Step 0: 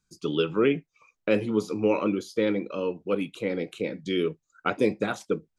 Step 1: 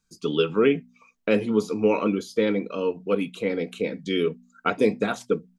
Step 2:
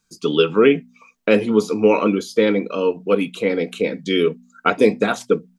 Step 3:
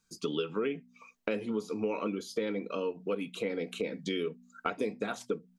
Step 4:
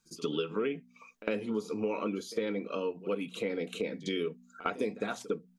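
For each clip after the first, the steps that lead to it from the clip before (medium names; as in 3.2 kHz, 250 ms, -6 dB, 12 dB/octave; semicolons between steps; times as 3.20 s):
comb 4.4 ms, depth 33%; de-hum 61.1 Hz, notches 4; trim +2 dB
bass shelf 120 Hz -8.5 dB; trim +7 dB
compression 4:1, threshold -26 dBFS, peak gain reduction 15 dB; trim -5.5 dB
pre-echo 55 ms -17 dB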